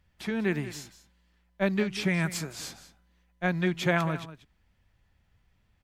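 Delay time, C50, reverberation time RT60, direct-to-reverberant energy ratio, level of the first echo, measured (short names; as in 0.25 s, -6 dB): 0.189 s, none, none, none, -14.5 dB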